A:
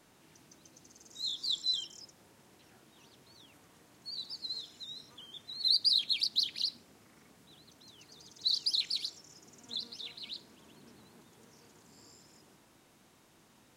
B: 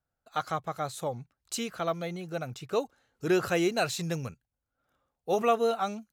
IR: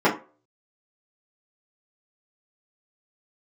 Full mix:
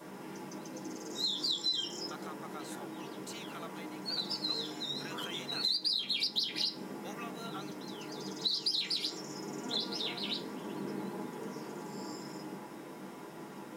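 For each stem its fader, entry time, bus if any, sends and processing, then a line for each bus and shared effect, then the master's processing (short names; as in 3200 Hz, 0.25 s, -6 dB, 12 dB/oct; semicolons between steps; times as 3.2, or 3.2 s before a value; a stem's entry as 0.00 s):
+2.5 dB, 0.00 s, send -7 dB, high shelf 11000 Hz +6 dB
-7.0 dB, 1.75 s, no send, HPF 1300 Hz; limiter -28 dBFS, peak gain reduction 9 dB; short-mantissa float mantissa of 4-bit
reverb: on, RT60 0.35 s, pre-delay 3 ms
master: compressor 5:1, threshold -30 dBFS, peak gain reduction 11.5 dB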